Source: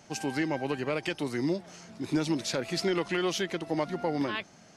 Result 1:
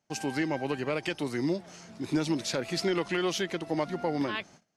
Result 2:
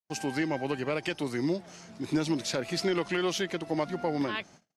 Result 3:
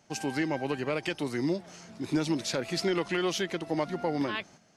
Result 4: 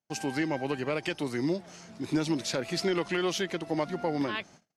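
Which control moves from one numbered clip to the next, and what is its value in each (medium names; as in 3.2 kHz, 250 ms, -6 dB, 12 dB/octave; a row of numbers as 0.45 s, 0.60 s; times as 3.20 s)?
gate, range: -24 dB, -56 dB, -8 dB, -37 dB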